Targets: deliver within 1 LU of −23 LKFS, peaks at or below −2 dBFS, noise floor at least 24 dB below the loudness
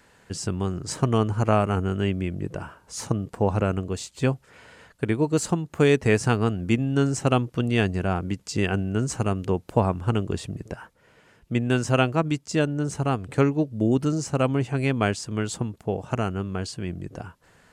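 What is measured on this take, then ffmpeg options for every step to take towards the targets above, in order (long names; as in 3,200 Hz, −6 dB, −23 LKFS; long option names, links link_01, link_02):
integrated loudness −25.0 LKFS; sample peak −5.5 dBFS; target loudness −23.0 LKFS
→ -af "volume=2dB"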